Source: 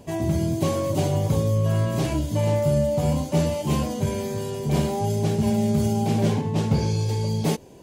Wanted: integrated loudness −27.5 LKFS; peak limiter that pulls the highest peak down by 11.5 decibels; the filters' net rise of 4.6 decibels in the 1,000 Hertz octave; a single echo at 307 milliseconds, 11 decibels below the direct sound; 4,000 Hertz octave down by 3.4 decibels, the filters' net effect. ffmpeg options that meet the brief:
ffmpeg -i in.wav -af "equalizer=frequency=1000:width_type=o:gain=6,equalizer=frequency=4000:width_type=o:gain=-5,alimiter=limit=-20.5dB:level=0:latency=1,aecho=1:1:307:0.282,volume=1dB" out.wav

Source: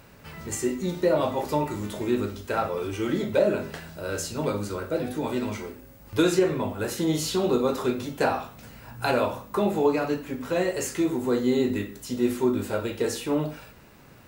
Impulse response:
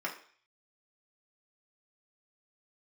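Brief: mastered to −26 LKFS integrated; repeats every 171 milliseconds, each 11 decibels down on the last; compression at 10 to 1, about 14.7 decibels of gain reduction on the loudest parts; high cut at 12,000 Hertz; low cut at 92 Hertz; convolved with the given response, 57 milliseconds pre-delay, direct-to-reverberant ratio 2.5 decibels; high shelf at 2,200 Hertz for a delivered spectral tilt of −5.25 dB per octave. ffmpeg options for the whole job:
-filter_complex "[0:a]highpass=92,lowpass=12000,highshelf=frequency=2200:gain=-4.5,acompressor=threshold=-32dB:ratio=10,aecho=1:1:171|342|513:0.282|0.0789|0.0221,asplit=2[link_01][link_02];[1:a]atrim=start_sample=2205,adelay=57[link_03];[link_02][link_03]afir=irnorm=-1:irlink=0,volume=-7.5dB[link_04];[link_01][link_04]amix=inputs=2:normalize=0,volume=9.5dB"

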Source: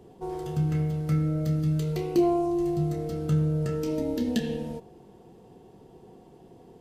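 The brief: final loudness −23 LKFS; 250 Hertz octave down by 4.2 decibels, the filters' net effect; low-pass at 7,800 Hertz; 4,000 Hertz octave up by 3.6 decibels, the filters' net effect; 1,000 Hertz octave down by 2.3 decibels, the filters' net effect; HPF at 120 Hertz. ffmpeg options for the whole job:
ffmpeg -i in.wav -af "highpass=120,lowpass=7800,equalizer=frequency=250:width_type=o:gain=-6.5,equalizer=frequency=1000:width_type=o:gain=-3.5,equalizer=frequency=4000:width_type=o:gain=5,volume=8dB" out.wav

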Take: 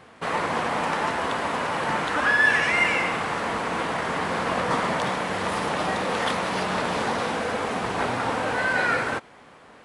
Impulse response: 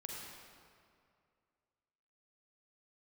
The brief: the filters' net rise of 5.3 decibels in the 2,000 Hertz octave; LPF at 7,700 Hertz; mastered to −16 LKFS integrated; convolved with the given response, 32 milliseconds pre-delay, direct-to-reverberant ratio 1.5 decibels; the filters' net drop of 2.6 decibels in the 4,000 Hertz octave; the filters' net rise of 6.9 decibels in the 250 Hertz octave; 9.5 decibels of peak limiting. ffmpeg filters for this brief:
-filter_complex "[0:a]lowpass=7700,equalizer=frequency=250:width_type=o:gain=8.5,equalizer=frequency=2000:width_type=o:gain=8,equalizer=frequency=4000:width_type=o:gain=-8,alimiter=limit=-13dB:level=0:latency=1,asplit=2[link_01][link_02];[1:a]atrim=start_sample=2205,adelay=32[link_03];[link_02][link_03]afir=irnorm=-1:irlink=0,volume=0dB[link_04];[link_01][link_04]amix=inputs=2:normalize=0,volume=4dB"

